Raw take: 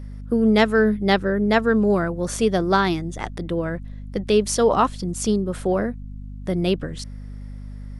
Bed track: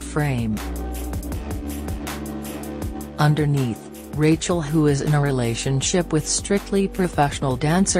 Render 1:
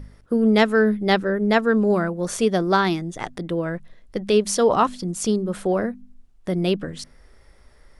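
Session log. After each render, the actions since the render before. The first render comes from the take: de-hum 50 Hz, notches 5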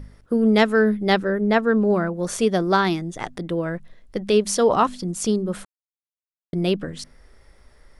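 1.40–2.14 s: treble shelf 4.3 kHz -9 dB; 5.65–6.53 s: mute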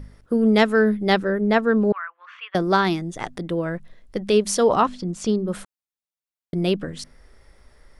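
1.92–2.55 s: elliptic band-pass 1.1–2.9 kHz, stop band 70 dB; 4.81–5.48 s: distance through air 81 m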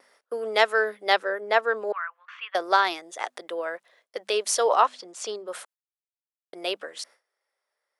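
gate with hold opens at -37 dBFS; high-pass 520 Hz 24 dB/octave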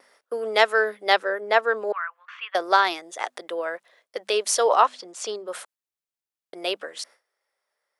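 trim +2 dB

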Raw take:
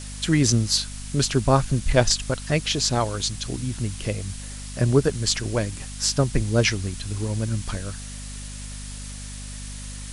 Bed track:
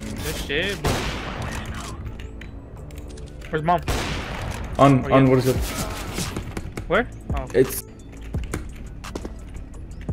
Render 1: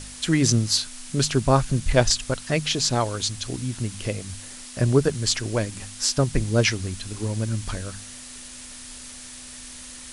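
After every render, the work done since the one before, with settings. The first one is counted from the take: de-hum 50 Hz, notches 4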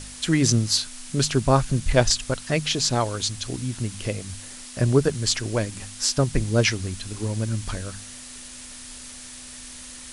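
no audible change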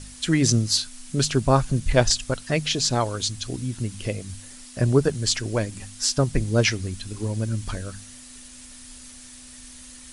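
noise reduction 6 dB, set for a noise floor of -41 dBFS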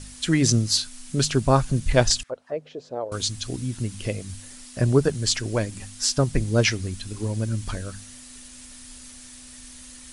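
2.23–3.12 s: auto-wah 510–2000 Hz, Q 3, down, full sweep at -22 dBFS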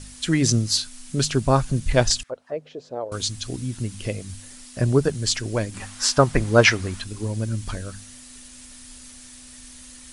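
5.74–7.04 s: peaking EQ 1.1 kHz +12.5 dB 2.4 oct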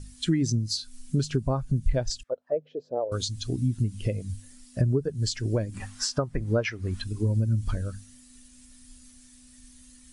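compression 16:1, threshold -25 dBFS, peak gain reduction 17 dB; spectral contrast expander 1.5:1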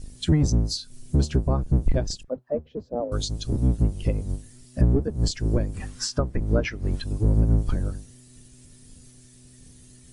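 octave divider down 1 oct, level +4 dB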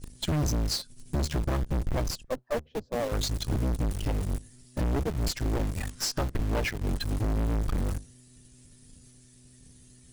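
valve stage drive 29 dB, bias 0.75; in parallel at -3 dB: word length cut 6-bit, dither none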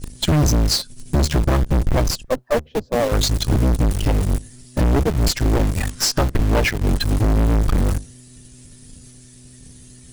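trim +11 dB

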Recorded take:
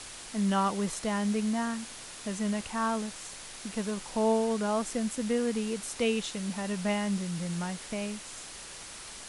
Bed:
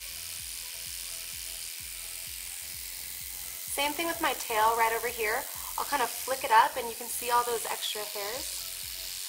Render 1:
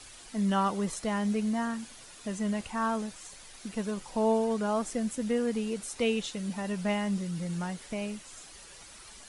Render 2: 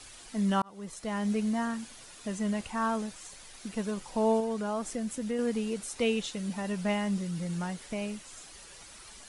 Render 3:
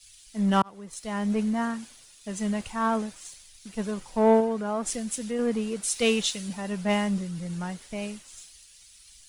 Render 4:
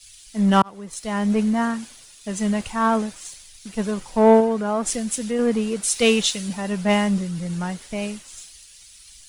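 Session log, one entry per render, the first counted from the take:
noise reduction 9 dB, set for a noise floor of -45 dBFS
0.62–1.32 s: fade in; 4.40–5.39 s: compression 1.5:1, threshold -34 dBFS
waveshaping leveller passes 1; three bands expanded up and down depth 100%
trim +6 dB

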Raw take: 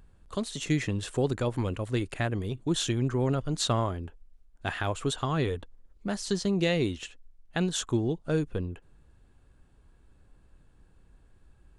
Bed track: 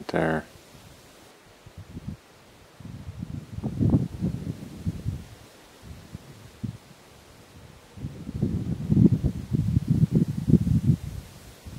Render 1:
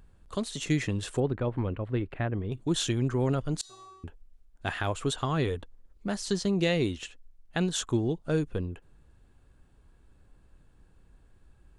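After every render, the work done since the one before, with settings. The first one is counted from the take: 1.20–2.52 s: distance through air 460 m; 3.61–4.04 s: feedback comb 380 Hz, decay 0.89 s, mix 100%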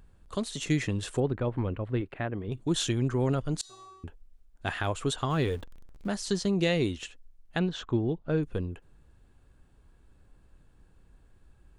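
2.01–2.48 s: bass shelf 100 Hz -11.5 dB; 5.30–6.08 s: jump at every zero crossing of -46 dBFS; 7.59–8.43 s: distance through air 230 m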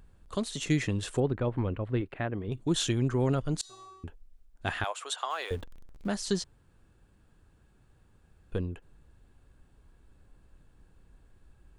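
4.84–5.51 s: high-pass 630 Hz 24 dB/octave; 6.44–8.52 s: room tone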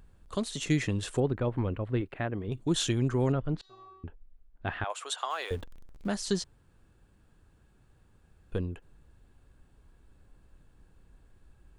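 3.32–4.90 s: distance through air 350 m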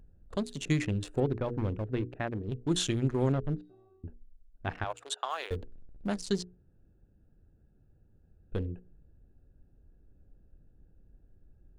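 local Wiener filter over 41 samples; hum notches 60/120/180/240/300/360/420/480 Hz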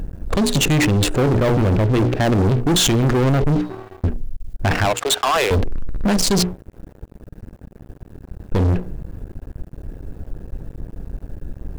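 in parallel at +2.5 dB: compressor with a negative ratio -36 dBFS, ratio -0.5; on the sum: waveshaping leveller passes 5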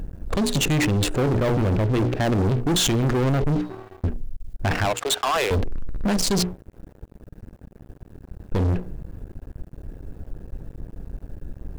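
trim -4.5 dB

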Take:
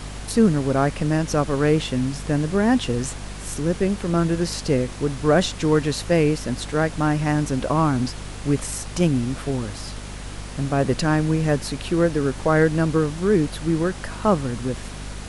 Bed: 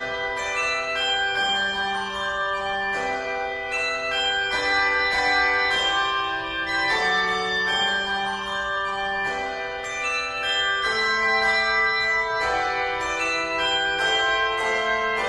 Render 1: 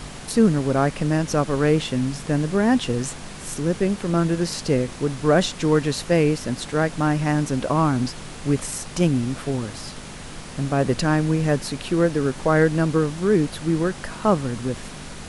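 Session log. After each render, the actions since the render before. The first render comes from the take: hum notches 50/100 Hz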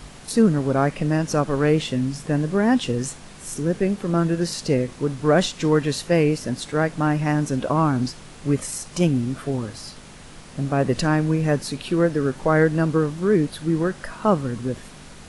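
noise print and reduce 6 dB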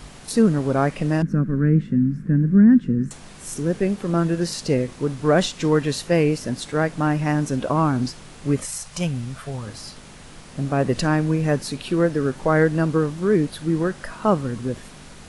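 1.22–3.11 s: FFT filter 110 Hz 0 dB, 200 Hz +11 dB, 820 Hz -24 dB, 1.6 kHz -4 dB, 3.1 kHz -25 dB; 8.65–9.67 s: peaking EQ 310 Hz -14.5 dB 1 oct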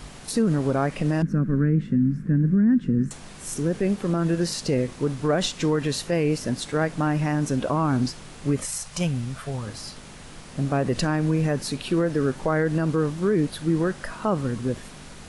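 peak limiter -13.5 dBFS, peak gain reduction 8 dB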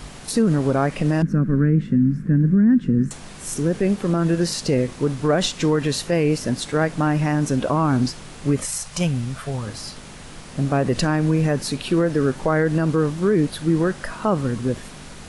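trim +3.5 dB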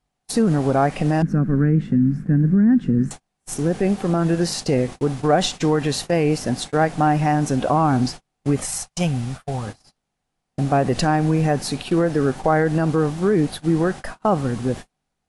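gate -29 dBFS, range -40 dB; peaking EQ 760 Hz +10.5 dB 0.27 oct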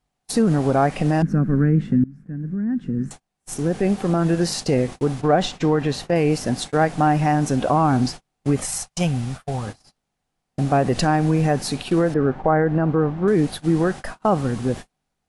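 2.04–3.94 s: fade in, from -23 dB; 5.21–6.16 s: low-pass 2.9 kHz 6 dB/octave; 12.14–13.28 s: low-pass 1.7 kHz

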